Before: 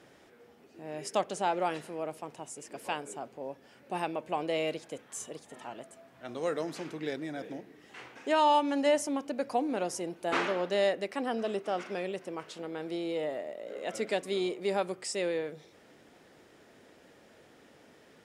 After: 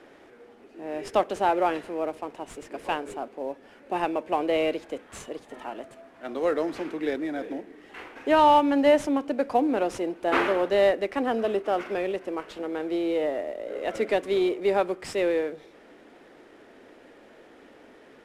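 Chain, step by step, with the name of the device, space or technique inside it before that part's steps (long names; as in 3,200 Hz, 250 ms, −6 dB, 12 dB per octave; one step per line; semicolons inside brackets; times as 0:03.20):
early wireless headset (high-pass filter 280 Hz 24 dB per octave; variable-slope delta modulation 64 kbit/s)
bass and treble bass +11 dB, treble −13 dB
level +6.5 dB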